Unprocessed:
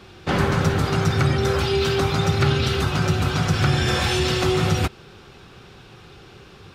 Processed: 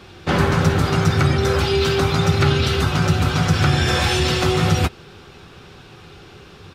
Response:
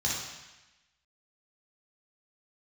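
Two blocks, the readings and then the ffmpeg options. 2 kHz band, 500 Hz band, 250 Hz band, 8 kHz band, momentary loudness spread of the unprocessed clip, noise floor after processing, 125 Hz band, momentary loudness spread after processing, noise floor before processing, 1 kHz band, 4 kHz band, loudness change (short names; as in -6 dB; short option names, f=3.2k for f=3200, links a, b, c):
+3.0 dB, +2.0 dB, +3.0 dB, +3.0 dB, 2 LU, -44 dBFS, +3.0 dB, 2 LU, -46 dBFS, +3.0 dB, +2.5 dB, +3.0 dB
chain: -filter_complex "[0:a]asplit=2[a][b];[b]adelay=12,volume=-12dB[c];[a][c]amix=inputs=2:normalize=0,volume=2.5dB"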